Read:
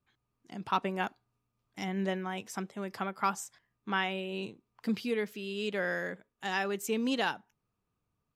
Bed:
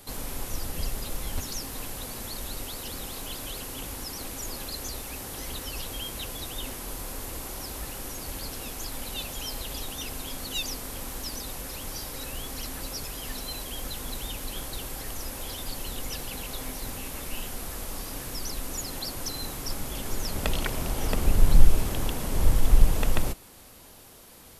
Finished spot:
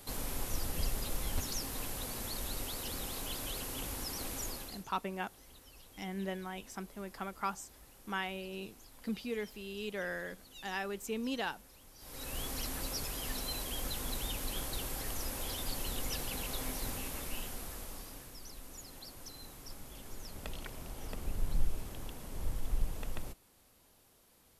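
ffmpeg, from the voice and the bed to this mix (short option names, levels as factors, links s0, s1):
-filter_complex "[0:a]adelay=4200,volume=0.501[s0];[1:a]volume=5.62,afade=t=out:st=4.41:d=0.44:silence=0.125893,afade=t=in:st=11.98:d=0.43:silence=0.11885,afade=t=out:st=16.84:d=1.5:silence=0.237137[s1];[s0][s1]amix=inputs=2:normalize=0"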